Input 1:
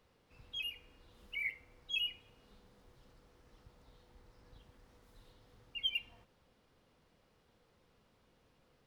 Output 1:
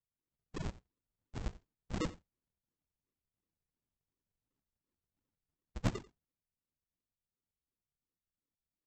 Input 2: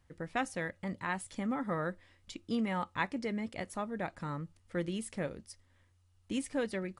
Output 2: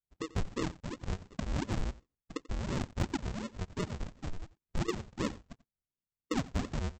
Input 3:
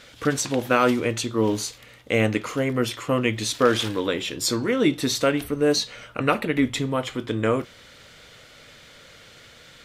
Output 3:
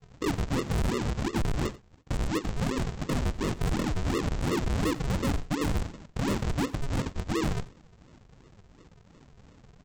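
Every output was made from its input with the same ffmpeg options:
-filter_complex "[0:a]acrossover=split=2500[a][b];[b]acompressor=threshold=-36dB:ratio=4:attack=1:release=60[c];[a][c]amix=inputs=2:normalize=0,agate=range=-18dB:threshold=-50dB:ratio=16:detection=peak,afftdn=nr=16:nf=-36,lowshelf=f=200:t=q:w=3:g=-12.5,aecho=1:1:3.2:0.54,acrossover=split=400|1100[d][e][f];[d]acompressor=threshold=-33dB:ratio=10[g];[g][e][f]amix=inputs=3:normalize=0,aexciter=amount=9.4:drive=4.2:freq=4k,aresample=16000,acrusher=samples=39:mix=1:aa=0.000001:lfo=1:lforange=39:lforate=2.8,aresample=44100,asoftclip=type=hard:threshold=-24.5dB,aecho=1:1:89:0.106"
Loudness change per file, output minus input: -4.0, -1.0, -7.0 LU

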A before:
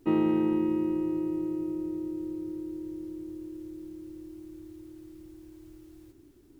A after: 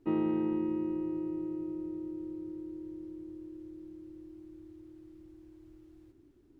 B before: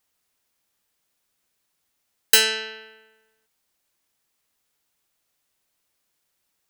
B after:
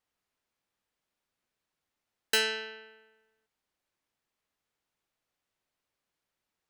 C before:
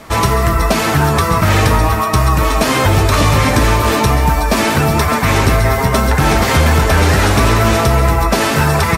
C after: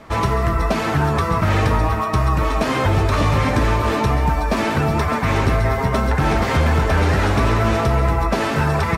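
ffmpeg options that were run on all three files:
-af "lowpass=f=2.5k:p=1,volume=-5dB"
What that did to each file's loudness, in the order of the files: -5.0, -11.0, -6.0 LU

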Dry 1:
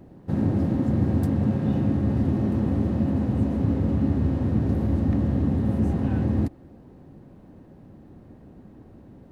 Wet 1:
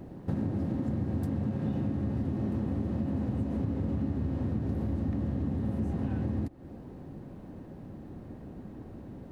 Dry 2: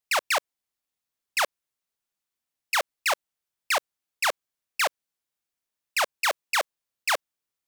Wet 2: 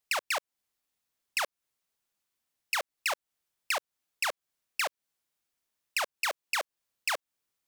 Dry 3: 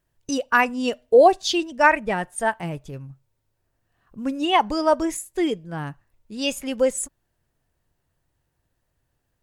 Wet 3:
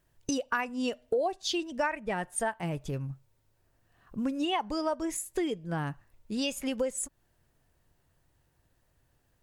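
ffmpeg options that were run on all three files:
-af "acompressor=threshold=-32dB:ratio=5,volume=3dB"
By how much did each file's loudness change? -8.0, -5.5, -11.0 LU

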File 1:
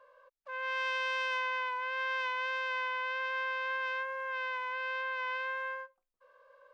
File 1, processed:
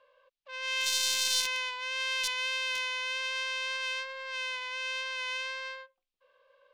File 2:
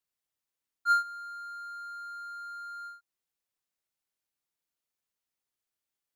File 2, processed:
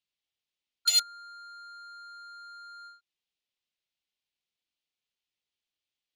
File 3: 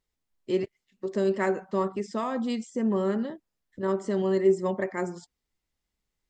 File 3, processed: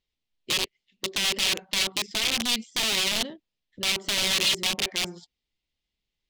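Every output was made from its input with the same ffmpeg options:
-af "aeval=exprs='(mod(16.8*val(0)+1,2)-1)/16.8':c=same,adynamicsmooth=sensitivity=4:basefreq=2.8k,highshelf=f=2.1k:t=q:w=1.5:g=14,volume=-2.5dB"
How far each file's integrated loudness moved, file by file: +3.5, +9.0, +3.5 LU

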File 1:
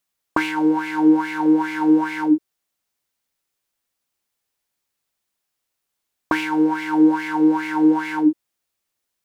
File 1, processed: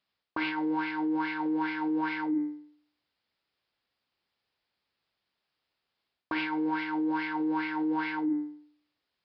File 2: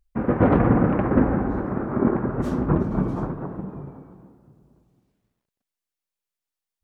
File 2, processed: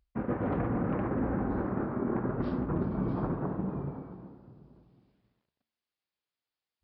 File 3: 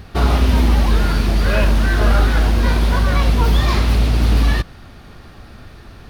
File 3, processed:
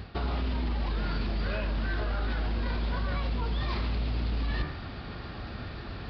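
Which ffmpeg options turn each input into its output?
-af "highpass=41,bandreject=f=74.59:t=h:w=4,bandreject=f=149.18:t=h:w=4,bandreject=f=223.77:t=h:w=4,bandreject=f=298.36:t=h:w=4,bandreject=f=372.95:t=h:w=4,bandreject=f=447.54:t=h:w=4,bandreject=f=522.13:t=h:w=4,bandreject=f=596.72:t=h:w=4,bandreject=f=671.31:t=h:w=4,bandreject=f=745.9:t=h:w=4,bandreject=f=820.49:t=h:w=4,bandreject=f=895.08:t=h:w=4,bandreject=f=969.67:t=h:w=4,bandreject=f=1.04426k:t=h:w=4,bandreject=f=1.11885k:t=h:w=4,bandreject=f=1.19344k:t=h:w=4,bandreject=f=1.26803k:t=h:w=4,bandreject=f=1.34262k:t=h:w=4,bandreject=f=1.41721k:t=h:w=4,bandreject=f=1.4918k:t=h:w=4,bandreject=f=1.56639k:t=h:w=4,bandreject=f=1.64098k:t=h:w=4,bandreject=f=1.71557k:t=h:w=4,bandreject=f=1.79016k:t=h:w=4,bandreject=f=1.86475k:t=h:w=4,bandreject=f=1.93934k:t=h:w=4,bandreject=f=2.01393k:t=h:w=4,bandreject=f=2.08852k:t=h:w=4,bandreject=f=2.16311k:t=h:w=4,bandreject=f=2.2377k:t=h:w=4,bandreject=f=2.31229k:t=h:w=4,bandreject=f=2.38688k:t=h:w=4,alimiter=limit=-12.5dB:level=0:latency=1:release=32,areverse,acompressor=threshold=-30dB:ratio=5,areverse,aresample=11025,aresample=44100,volume=1.5dB"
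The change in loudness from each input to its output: -11.5, -10.0, -16.5 LU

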